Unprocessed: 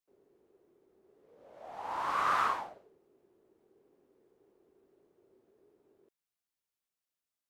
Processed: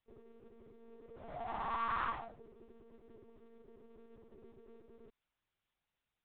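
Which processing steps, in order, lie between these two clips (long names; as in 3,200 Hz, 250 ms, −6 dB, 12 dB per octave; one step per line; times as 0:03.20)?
comb filter 2.7 ms, depth 71%
downward compressor 2.5 to 1, threshold −48 dBFS, peak gain reduction 16 dB
tempo change 1.2×
one-pitch LPC vocoder at 8 kHz 230 Hz
level +6.5 dB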